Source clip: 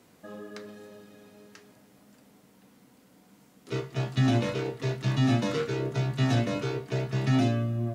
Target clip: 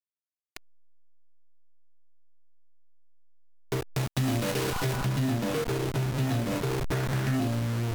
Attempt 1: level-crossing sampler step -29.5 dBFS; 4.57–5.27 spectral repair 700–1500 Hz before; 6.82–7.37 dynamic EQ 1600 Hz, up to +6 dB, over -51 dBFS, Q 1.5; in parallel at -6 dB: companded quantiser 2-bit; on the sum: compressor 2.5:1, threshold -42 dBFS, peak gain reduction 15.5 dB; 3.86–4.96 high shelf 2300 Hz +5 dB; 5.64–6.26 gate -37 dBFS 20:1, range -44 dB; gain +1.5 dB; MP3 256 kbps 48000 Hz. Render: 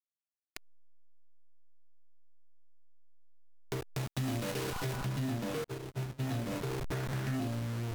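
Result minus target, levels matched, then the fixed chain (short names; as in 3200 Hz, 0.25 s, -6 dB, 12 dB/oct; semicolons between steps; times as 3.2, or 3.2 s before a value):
compressor: peak gain reduction +7 dB
level-crossing sampler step -29.5 dBFS; 4.57–5.27 spectral repair 700–1500 Hz before; 6.82–7.37 dynamic EQ 1600 Hz, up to +6 dB, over -51 dBFS, Q 1.5; in parallel at -6 dB: companded quantiser 2-bit; on the sum: compressor 2.5:1, threshold -30 dBFS, peak gain reduction 8.5 dB; 3.86–4.96 high shelf 2300 Hz +5 dB; 5.64–6.26 gate -37 dBFS 20:1, range -44 dB; gain +1.5 dB; MP3 256 kbps 48000 Hz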